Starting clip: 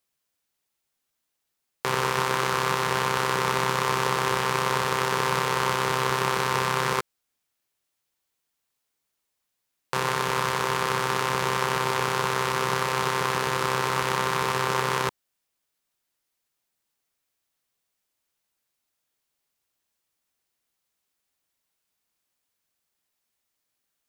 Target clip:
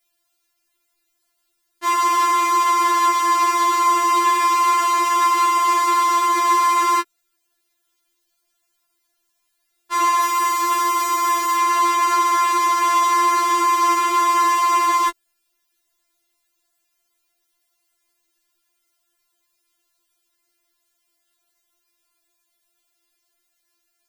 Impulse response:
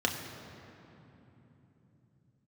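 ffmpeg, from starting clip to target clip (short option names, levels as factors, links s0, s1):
-filter_complex "[0:a]asettb=1/sr,asplit=3[s0][s1][s2];[s0]atrim=end=10.224[s3];[s1]atrim=start=10.22:end=11.58,asetpts=PTS-STARTPTS,afade=t=in:d=0.004:c=qsin,afade=t=out:st=1.356:d=0.004:c=qsin,highshelf=f=8800:g=10[s4];[s2]atrim=start=11.576[s5];[s3][s4]acrossfade=d=0.004:c1=hsin:c2=qsin[s6];[s6][s5]acrossfade=d=0.004:c1=qsin:c2=hsin,alimiter=level_in=3.55:limit=0.891:release=50:level=0:latency=1,afftfilt=real='re*4*eq(mod(b,16),0)':imag='im*4*eq(mod(b,16),0)':win_size=2048:overlap=0.75"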